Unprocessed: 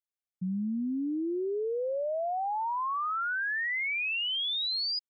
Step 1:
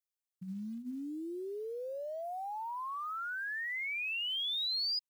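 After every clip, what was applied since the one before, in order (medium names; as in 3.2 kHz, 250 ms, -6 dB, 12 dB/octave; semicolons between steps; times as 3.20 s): treble shelf 3.3 kHz +10 dB; hum notches 60/120/180/240 Hz; short-mantissa float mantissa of 4-bit; trim -9 dB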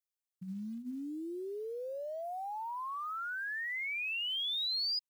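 no audible change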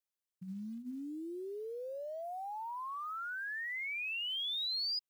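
high-pass 44 Hz; trim -2 dB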